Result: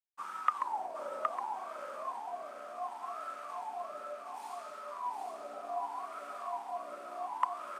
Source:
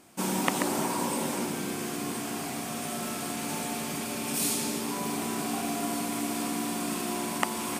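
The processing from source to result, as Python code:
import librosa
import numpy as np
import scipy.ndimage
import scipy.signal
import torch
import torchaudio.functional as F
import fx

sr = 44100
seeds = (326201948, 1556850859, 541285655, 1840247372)

p1 = scipy.signal.sosfilt(scipy.signal.butter(4, 140.0, 'highpass', fs=sr, output='sos'), x)
p2 = fx.tilt_eq(p1, sr, slope=2.5)
p3 = fx.rider(p2, sr, range_db=10, speed_s=0.5)
p4 = p2 + (p3 * librosa.db_to_amplitude(1.0))
p5 = np.sign(p4) * np.maximum(np.abs(p4) - 10.0 ** (-29.0 / 20.0), 0.0)
p6 = fx.wah_lfo(p5, sr, hz=0.68, low_hz=580.0, high_hz=1300.0, q=22.0)
p7 = p6 + 10.0 ** (-4.0 / 20.0) * np.pad(p6, (int(767 * sr / 1000.0), 0))[:len(p6)]
y = p7 * librosa.db_to_amplitude(6.0)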